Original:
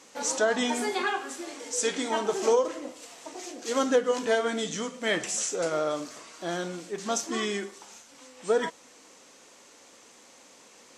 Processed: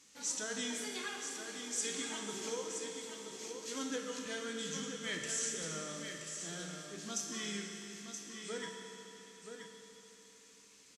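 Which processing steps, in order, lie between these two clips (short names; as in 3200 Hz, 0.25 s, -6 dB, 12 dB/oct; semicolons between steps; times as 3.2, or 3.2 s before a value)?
passive tone stack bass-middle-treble 6-0-2; echo 0.975 s -7.5 dB; reverb RT60 3.6 s, pre-delay 5 ms, DRR 2 dB; gain +7 dB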